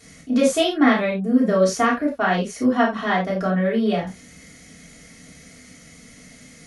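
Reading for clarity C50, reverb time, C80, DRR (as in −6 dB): 7.5 dB, non-exponential decay, 15.0 dB, −6.5 dB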